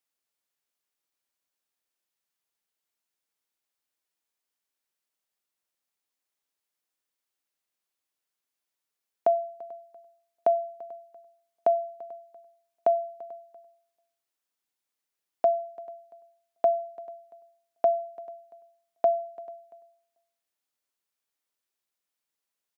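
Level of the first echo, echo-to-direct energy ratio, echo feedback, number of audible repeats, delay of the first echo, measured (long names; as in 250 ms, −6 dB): −21.0 dB, −20.5 dB, 32%, 2, 340 ms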